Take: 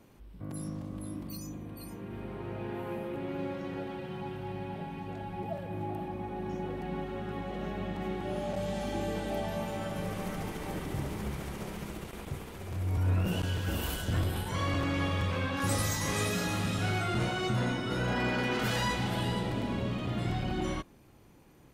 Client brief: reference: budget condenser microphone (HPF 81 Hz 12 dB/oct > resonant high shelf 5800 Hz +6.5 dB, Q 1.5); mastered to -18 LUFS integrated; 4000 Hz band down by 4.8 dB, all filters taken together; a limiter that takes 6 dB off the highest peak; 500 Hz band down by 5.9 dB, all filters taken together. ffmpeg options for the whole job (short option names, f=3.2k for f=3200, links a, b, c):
-af "equalizer=f=500:t=o:g=-8,equalizer=f=4k:t=o:g=-5,alimiter=level_in=2dB:limit=-24dB:level=0:latency=1,volume=-2dB,highpass=81,highshelf=f=5.8k:t=q:w=1.5:g=6.5,volume=19dB"